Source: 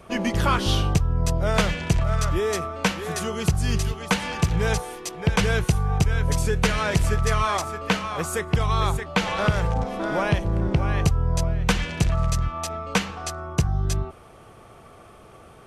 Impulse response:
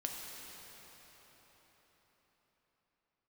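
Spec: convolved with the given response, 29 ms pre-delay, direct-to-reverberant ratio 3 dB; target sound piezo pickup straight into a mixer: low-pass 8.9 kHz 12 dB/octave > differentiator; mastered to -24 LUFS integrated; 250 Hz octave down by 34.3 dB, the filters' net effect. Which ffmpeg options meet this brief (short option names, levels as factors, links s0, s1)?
-filter_complex "[0:a]equalizer=f=250:t=o:g=-6.5,asplit=2[s0][s1];[1:a]atrim=start_sample=2205,adelay=29[s2];[s1][s2]afir=irnorm=-1:irlink=0,volume=0.631[s3];[s0][s3]amix=inputs=2:normalize=0,lowpass=8900,aderivative,volume=3.76"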